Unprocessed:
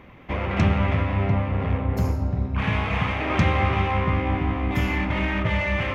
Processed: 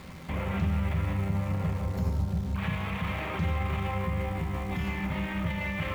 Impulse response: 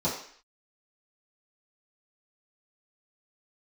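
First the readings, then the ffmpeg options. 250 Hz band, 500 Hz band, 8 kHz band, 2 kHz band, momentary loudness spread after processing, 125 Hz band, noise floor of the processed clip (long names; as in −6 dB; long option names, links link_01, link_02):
−6.5 dB, −9.0 dB, can't be measured, −9.0 dB, 3 LU, −6.5 dB, −36 dBFS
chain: -filter_complex "[0:a]acompressor=threshold=-27dB:ratio=5,acrusher=bits=9:dc=4:mix=0:aa=0.000001,alimiter=level_in=1.5dB:limit=-24dB:level=0:latency=1:release=21,volume=-1.5dB,asplit=2[link_01][link_02];[link_02]bass=frequency=250:gain=7,treble=frequency=4000:gain=10[link_03];[1:a]atrim=start_sample=2205[link_04];[link_03][link_04]afir=irnorm=-1:irlink=0,volume=-19dB[link_05];[link_01][link_05]amix=inputs=2:normalize=0"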